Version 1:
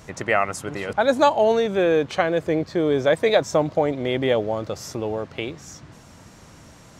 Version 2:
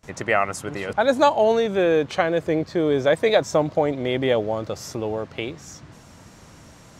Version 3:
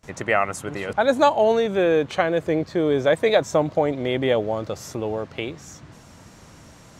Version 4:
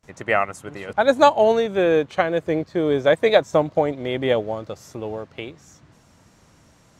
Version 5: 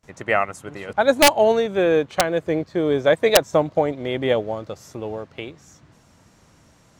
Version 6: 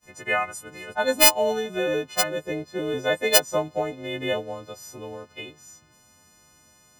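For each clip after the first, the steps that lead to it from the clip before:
noise gate with hold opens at −38 dBFS
dynamic equaliser 5,100 Hz, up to −5 dB, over −50 dBFS, Q 3.5
expander for the loud parts 1.5 to 1, over −35 dBFS; level +3.5 dB
wrap-around overflow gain 4 dB
every partial snapped to a pitch grid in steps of 3 semitones; level −7 dB

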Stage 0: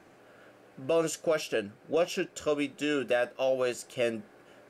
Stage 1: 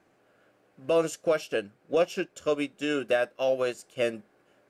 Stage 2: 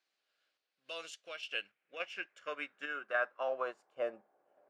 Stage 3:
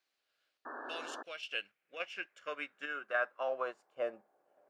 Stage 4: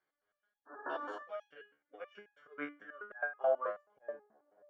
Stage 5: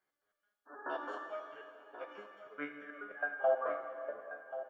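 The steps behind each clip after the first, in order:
expander for the loud parts 1.5 to 1, over −47 dBFS; level +3.5 dB
dynamic equaliser 1,200 Hz, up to +3 dB, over −39 dBFS, Q 0.71; band-pass filter sweep 4,200 Hz → 700 Hz, 0:00.71–0:04.44; sample-and-hold tremolo; level +1 dB
sound drawn into the spectrogram noise, 0:00.65–0:01.23, 240–1,800 Hz −45 dBFS
volume swells 127 ms; Savitzky-Golay smoothing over 41 samples; step-sequenced resonator 9.3 Hz 73–830 Hz; level +12.5 dB
single-tap delay 1,084 ms −12.5 dB; dense smooth reverb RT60 2.5 s, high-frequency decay 1×, DRR 5 dB

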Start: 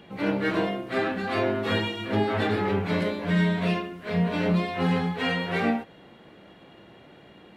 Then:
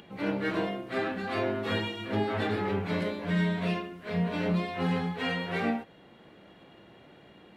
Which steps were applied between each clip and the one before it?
upward compression, threshold −45 dBFS
level −4.5 dB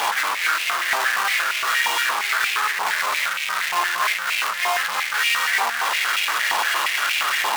sign of each sample alone
high-pass on a step sequencer 8.6 Hz 940–2,400 Hz
level +8.5 dB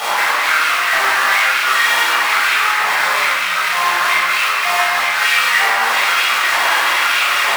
convolution reverb RT60 1.7 s, pre-delay 15 ms, DRR −7 dB
level −3 dB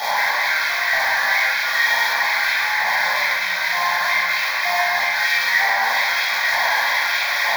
in parallel at 0 dB: brickwall limiter −8.5 dBFS, peak gain reduction 7 dB
on the sum: phaser with its sweep stopped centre 1,900 Hz, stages 8
level −6 dB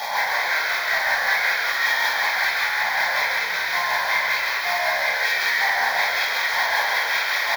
amplitude tremolo 5.3 Hz, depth 41%
on a send: echo with shifted repeats 134 ms, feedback 50%, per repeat −69 Hz, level −4.5 dB
on the sum: level −2.5 dB

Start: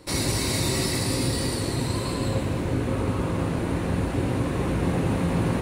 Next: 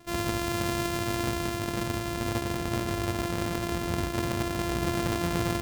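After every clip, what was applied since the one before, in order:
samples sorted by size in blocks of 128 samples
level −4.5 dB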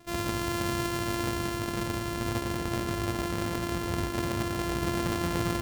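delay that swaps between a low-pass and a high-pass 115 ms, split 1,500 Hz, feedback 59%, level −8.5 dB
level −1.5 dB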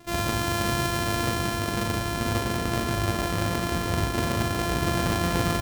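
double-tracking delay 39 ms −5 dB
level +4.5 dB

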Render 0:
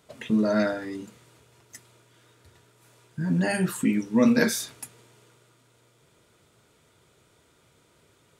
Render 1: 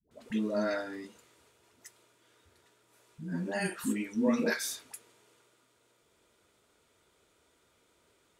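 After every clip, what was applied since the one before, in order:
parametric band 130 Hz −13 dB 0.82 octaves
all-pass dispersion highs, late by 112 ms, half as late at 470 Hz
level −6 dB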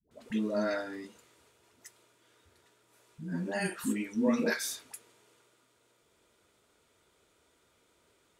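no processing that can be heard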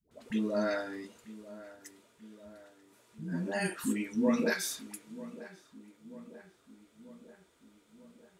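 feedback echo with a low-pass in the loop 940 ms, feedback 62%, low-pass 1,800 Hz, level −16.5 dB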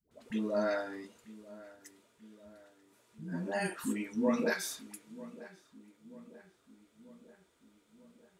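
dynamic equaliser 820 Hz, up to +5 dB, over −48 dBFS, Q 0.85
level −3.5 dB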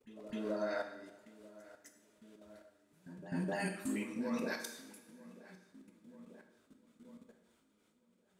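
output level in coarse steps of 19 dB
echo ahead of the sound 257 ms −14 dB
coupled-rooms reverb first 0.8 s, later 2.6 s, from −18 dB, DRR 4 dB
level +1 dB

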